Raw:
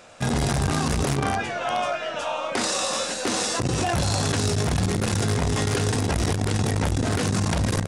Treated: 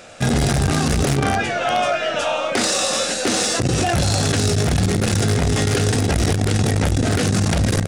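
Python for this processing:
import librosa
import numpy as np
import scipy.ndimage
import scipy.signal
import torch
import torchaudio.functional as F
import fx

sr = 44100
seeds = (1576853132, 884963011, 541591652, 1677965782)

p1 = fx.peak_eq(x, sr, hz=1000.0, db=-9.0, octaves=0.34)
p2 = fx.rider(p1, sr, range_db=10, speed_s=0.5)
p3 = p1 + (p2 * librosa.db_to_amplitude(1.0))
y = 10.0 ** (-8.0 / 20.0) * np.tanh(p3 / 10.0 ** (-8.0 / 20.0))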